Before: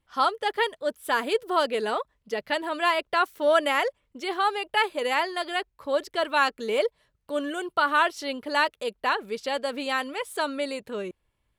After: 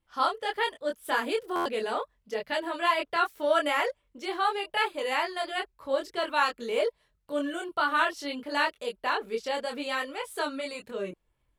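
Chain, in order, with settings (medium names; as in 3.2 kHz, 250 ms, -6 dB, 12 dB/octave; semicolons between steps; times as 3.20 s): chorus voices 6, 0.73 Hz, delay 24 ms, depth 3.5 ms; buffer glitch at 1.55 s, samples 512, times 8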